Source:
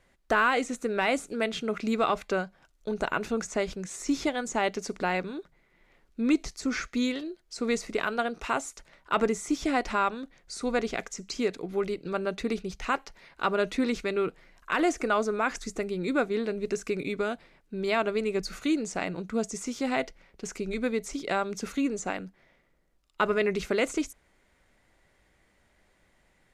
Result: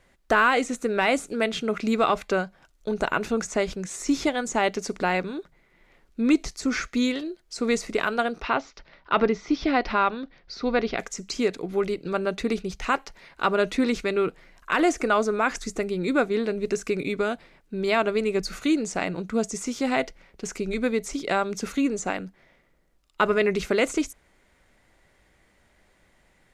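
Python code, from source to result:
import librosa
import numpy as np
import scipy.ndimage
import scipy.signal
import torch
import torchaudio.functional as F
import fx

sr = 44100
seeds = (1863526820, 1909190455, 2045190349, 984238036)

y = fx.steep_lowpass(x, sr, hz=5300.0, slope=48, at=(8.4, 10.98), fade=0.02)
y = y * 10.0 ** (4.0 / 20.0)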